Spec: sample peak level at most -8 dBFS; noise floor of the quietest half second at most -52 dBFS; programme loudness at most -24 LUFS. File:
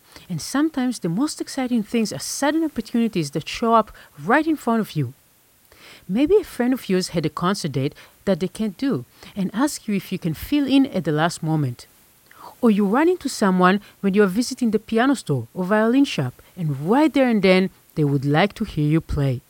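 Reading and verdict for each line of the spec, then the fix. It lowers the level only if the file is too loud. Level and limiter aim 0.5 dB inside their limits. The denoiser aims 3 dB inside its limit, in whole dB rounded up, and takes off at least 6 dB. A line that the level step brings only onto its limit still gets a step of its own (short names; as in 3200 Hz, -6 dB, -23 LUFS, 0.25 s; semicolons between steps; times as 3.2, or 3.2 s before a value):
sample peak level -3.0 dBFS: fail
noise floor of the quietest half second -57 dBFS: OK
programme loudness -21.0 LUFS: fail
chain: gain -3.5 dB; limiter -8.5 dBFS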